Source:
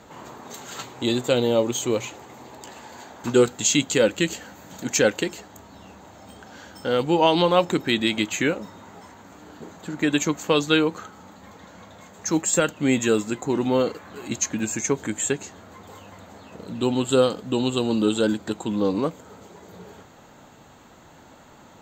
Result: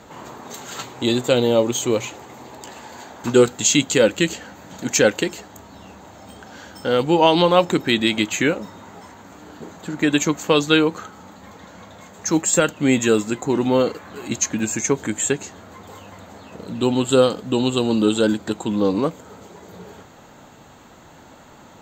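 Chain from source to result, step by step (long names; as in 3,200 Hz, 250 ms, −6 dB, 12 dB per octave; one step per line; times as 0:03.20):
0:04.32–0:04.83: high-shelf EQ 8,800 Hz −9 dB
level +3.5 dB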